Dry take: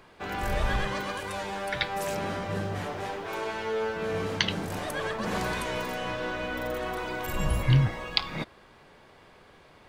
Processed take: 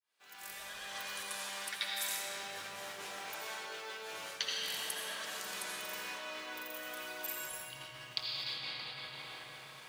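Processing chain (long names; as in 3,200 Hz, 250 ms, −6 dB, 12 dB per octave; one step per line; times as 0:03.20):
fade in at the beginning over 1.95 s
notch filter 2,100 Hz, Q 27
comb and all-pass reverb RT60 4.6 s, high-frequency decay 0.55×, pre-delay 45 ms, DRR −4.5 dB
reversed playback
downward compressor 10 to 1, threshold −32 dBFS, peak gain reduction 19 dB
reversed playback
first difference
level +9 dB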